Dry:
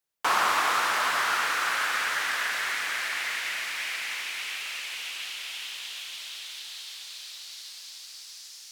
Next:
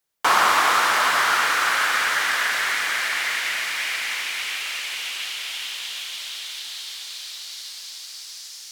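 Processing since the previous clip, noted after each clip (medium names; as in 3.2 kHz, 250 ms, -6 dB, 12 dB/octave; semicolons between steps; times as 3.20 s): band-stop 2.6 kHz, Q 30; trim +6.5 dB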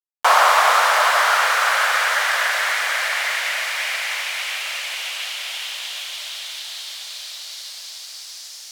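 resonant low shelf 410 Hz -12.5 dB, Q 3; bit crusher 11-bit; trim +1.5 dB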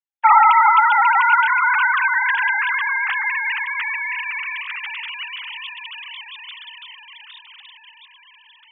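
formants replaced by sine waves; trim +1.5 dB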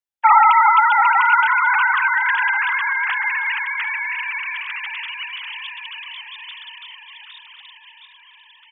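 feedback delay 744 ms, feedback 42%, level -14 dB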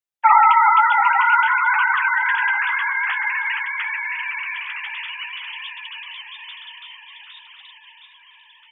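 flange 0.52 Hz, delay 9.7 ms, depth 5.1 ms, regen -32%; trim +2.5 dB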